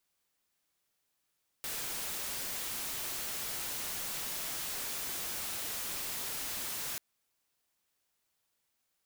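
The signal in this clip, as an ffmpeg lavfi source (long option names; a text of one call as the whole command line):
ffmpeg -f lavfi -i "anoisesrc=color=white:amplitude=0.0218:duration=5.34:sample_rate=44100:seed=1" out.wav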